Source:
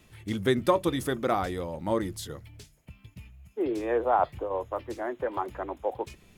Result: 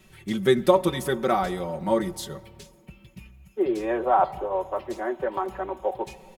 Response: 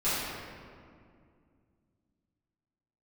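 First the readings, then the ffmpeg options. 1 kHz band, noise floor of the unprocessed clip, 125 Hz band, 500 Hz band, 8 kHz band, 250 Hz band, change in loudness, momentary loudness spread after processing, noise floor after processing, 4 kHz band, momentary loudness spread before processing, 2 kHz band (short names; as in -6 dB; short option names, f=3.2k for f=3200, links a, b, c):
+4.0 dB, -60 dBFS, +1.5 dB, +4.0 dB, +3.5 dB, +3.5 dB, +4.0 dB, 11 LU, -56 dBFS, +3.5 dB, 15 LU, +3.0 dB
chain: -filter_complex "[0:a]aecho=1:1:5.3:0.8,asplit=2[a][b];[b]equalizer=f=880:t=o:w=1:g=7.5[c];[1:a]atrim=start_sample=2205[d];[c][d]afir=irnorm=-1:irlink=0,volume=-32dB[e];[a][e]amix=inputs=2:normalize=0,volume=1dB"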